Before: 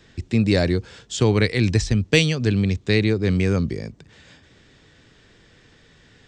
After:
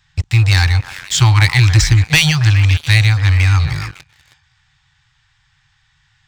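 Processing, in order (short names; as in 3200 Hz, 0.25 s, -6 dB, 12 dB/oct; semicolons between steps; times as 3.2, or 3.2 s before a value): delay with a stepping band-pass 0.139 s, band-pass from 680 Hz, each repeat 0.7 oct, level -7 dB; FFT band-reject 160–750 Hz; sample leveller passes 3; gain +1.5 dB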